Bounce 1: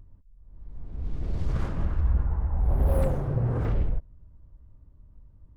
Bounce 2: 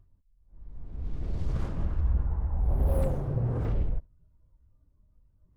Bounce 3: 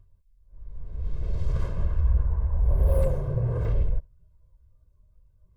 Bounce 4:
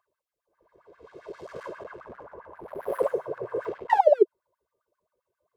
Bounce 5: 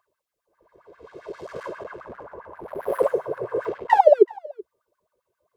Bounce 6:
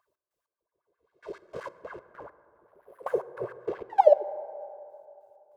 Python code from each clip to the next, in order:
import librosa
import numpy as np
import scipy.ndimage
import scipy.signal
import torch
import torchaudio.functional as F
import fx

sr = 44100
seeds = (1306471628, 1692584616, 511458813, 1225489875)

y1 = fx.noise_reduce_blind(x, sr, reduce_db=9)
y1 = fx.dynamic_eq(y1, sr, hz=1600.0, q=0.91, threshold_db=-49.0, ratio=4.0, max_db=-4)
y1 = F.gain(torch.from_numpy(y1), -2.5).numpy()
y2 = y1 + 0.72 * np.pad(y1, (int(1.9 * sr / 1000.0), 0))[:len(y1)]
y3 = fx.spec_paint(y2, sr, seeds[0], shape='fall', start_s=3.89, length_s=0.34, low_hz=430.0, high_hz=1000.0, level_db=-22.0)
y3 = np.clip(10.0 ** (19.5 / 20.0) * y3, -1.0, 1.0) / 10.0 ** (19.5 / 20.0)
y3 = fx.filter_lfo_highpass(y3, sr, shape='sine', hz=7.5, low_hz=350.0, high_hz=1700.0, q=6.5)
y3 = F.gain(torch.from_numpy(y3), -2.5).numpy()
y4 = y3 + 10.0 ** (-23.5 / 20.0) * np.pad(y3, (int(379 * sr / 1000.0), 0))[:len(y3)]
y4 = F.gain(torch.from_numpy(y4), 4.5).numpy()
y5 = fx.step_gate(y4, sr, bpm=98, pattern='x.x.....x.x.', floor_db=-24.0, edge_ms=4.5)
y5 = fx.rev_plate(y5, sr, seeds[1], rt60_s=2.9, hf_ratio=0.35, predelay_ms=0, drr_db=14.5)
y5 = F.gain(torch.from_numpy(y5), -3.5).numpy()